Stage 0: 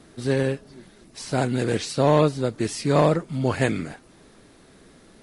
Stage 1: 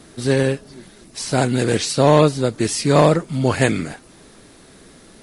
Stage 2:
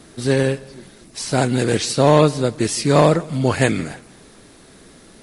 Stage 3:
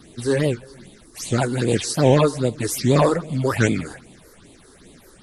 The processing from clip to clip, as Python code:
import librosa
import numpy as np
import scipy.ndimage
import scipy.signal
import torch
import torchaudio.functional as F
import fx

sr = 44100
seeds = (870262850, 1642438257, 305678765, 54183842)

y1 = fx.high_shelf(x, sr, hz=4300.0, db=6.0)
y1 = y1 * librosa.db_to_amplitude(5.0)
y2 = fx.echo_feedback(y1, sr, ms=166, feedback_pct=38, wet_db=-22.0)
y3 = fx.phaser_stages(y2, sr, stages=6, low_hz=160.0, high_hz=1600.0, hz=2.5, feedback_pct=0)
y3 = fx.record_warp(y3, sr, rpm=78.0, depth_cents=250.0)